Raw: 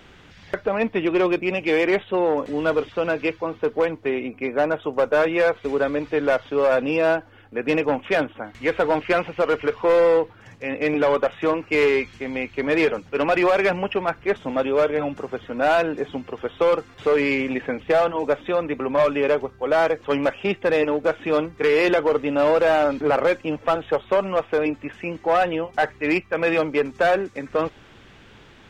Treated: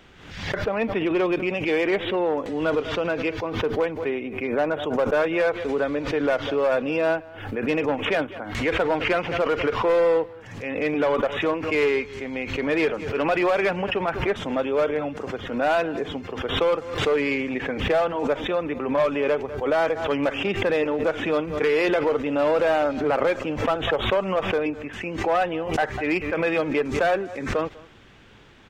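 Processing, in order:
slap from a distant wall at 34 metres, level −22 dB
background raised ahead of every attack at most 67 dB per second
level −3 dB

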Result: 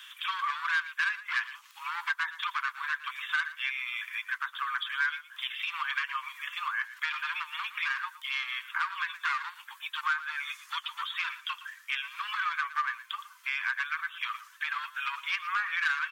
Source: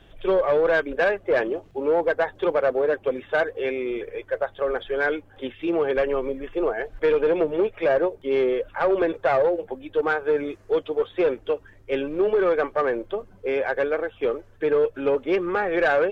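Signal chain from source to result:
Butterworth high-pass 1,000 Hz 96 dB per octave
high-shelf EQ 3,600 Hz +11.5 dB
downward compressor 2.5 to 1, threshold −40 dBFS, peak gain reduction 14 dB
on a send: single-tap delay 116 ms −15 dB
on the sum: level +7.5 dB

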